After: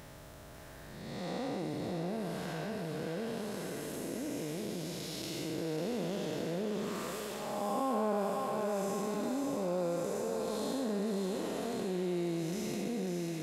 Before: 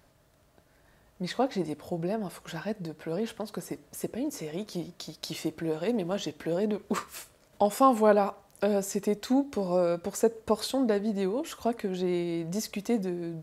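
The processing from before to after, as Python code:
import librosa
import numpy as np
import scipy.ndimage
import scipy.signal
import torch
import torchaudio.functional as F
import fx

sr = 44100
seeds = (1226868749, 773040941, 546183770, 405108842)

p1 = fx.spec_blur(x, sr, span_ms=352.0)
p2 = fx.notch(p1, sr, hz=4600.0, q=28.0)
p3 = p2 + fx.echo_thinned(p2, sr, ms=546, feedback_pct=71, hz=830.0, wet_db=-3.5, dry=0)
p4 = fx.env_flatten(p3, sr, amount_pct=50)
y = p4 * librosa.db_to_amplitude(-6.0)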